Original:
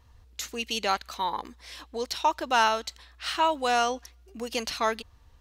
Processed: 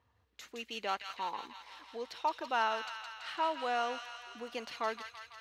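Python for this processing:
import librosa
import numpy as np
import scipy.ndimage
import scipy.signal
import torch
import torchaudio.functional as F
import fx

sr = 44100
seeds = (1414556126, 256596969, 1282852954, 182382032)

y = scipy.signal.sosfilt(scipy.signal.butter(4, 84.0, 'highpass', fs=sr, output='sos'), x)
y = fx.bass_treble(y, sr, bass_db=-5, treble_db=-13)
y = fx.echo_wet_highpass(y, sr, ms=166, feedback_pct=69, hz=1800.0, wet_db=-3.5)
y = y * 10.0 ** (-8.5 / 20.0)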